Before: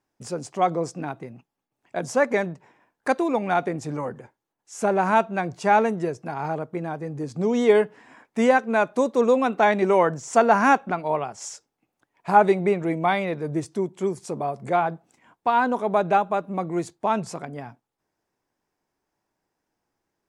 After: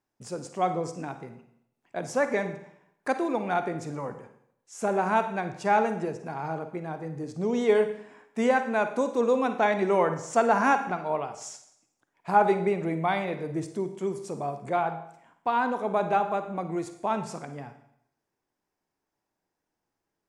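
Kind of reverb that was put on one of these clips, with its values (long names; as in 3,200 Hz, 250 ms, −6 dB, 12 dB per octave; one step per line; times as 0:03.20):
four-comb reverb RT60 0.71 s, DRR 8.5 dB
level −5 dB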